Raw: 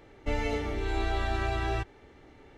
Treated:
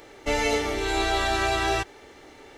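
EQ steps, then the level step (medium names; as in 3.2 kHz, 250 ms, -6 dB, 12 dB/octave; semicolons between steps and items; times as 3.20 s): tone controls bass -11 dB, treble +10 dB; +8.5 dB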